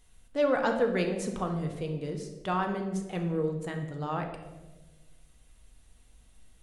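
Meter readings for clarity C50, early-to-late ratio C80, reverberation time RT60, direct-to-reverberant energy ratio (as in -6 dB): 7.0 dB, 9.0 dB, 1.3 s, 3.0 dB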